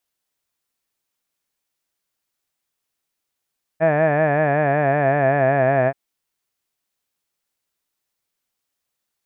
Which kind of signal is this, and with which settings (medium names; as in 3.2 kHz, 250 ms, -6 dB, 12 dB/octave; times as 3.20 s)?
formant-synthesis vowel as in had, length 2.13 s, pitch 156 Hz, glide -3 st